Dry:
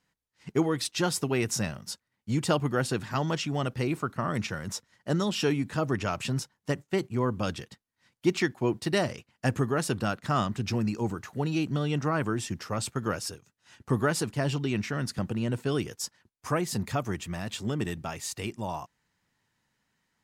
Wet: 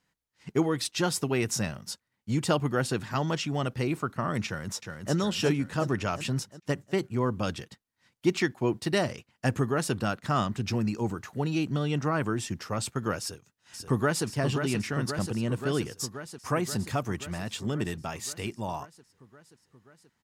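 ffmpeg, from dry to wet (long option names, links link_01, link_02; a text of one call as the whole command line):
ffmpeg -i in.wav -filter_complex "[0:a]asplit=2[link_01][link_02];[link_02]afade=type=in:start_time=4.46:duration=0.01,afade=type=out:start_time=5.15:duration=0.01,aecho=0:1:360|720|1080|1440|1800|2160|2520:0.562341|0.309288|0.170108|0.0935595|0.0514577|0.0283018|0.015566[link_03];[link_01][link_03]amix=inputs=2:normalize=0,asplit=2[link_04][link_05];[link_05]afade=type=in:start_time=13.2:duration=0.01,afade=type=out:start_time=14.26:duration=0.01,aecho=0:1:530|1060|1590|2120|2650|3180|3710|4240|4770|5300|5830|6360:0.473151|0.354863|0.266148|0.199611|0.149708|0.112281|0.0842108|0.0631581|0.0473686|0.0355264|0.0266448|0.0199836[link_06];[link_04][link_06]amix=inputs=2:normalize=0" out.wav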